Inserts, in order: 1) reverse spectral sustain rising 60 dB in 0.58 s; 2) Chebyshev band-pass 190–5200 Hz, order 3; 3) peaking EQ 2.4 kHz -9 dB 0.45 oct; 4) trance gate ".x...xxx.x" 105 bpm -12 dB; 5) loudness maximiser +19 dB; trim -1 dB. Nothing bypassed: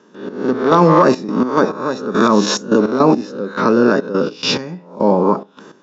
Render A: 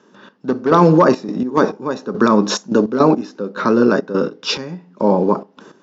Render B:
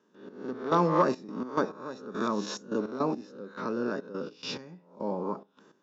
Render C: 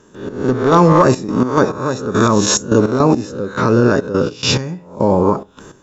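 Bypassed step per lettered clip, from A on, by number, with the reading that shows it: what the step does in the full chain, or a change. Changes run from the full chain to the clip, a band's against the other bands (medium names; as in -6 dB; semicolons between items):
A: 1, 125 Hz band +2.0 dB; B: 5, crest factor change +7.0 dB; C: 2, 125 Hz band +6.0 dB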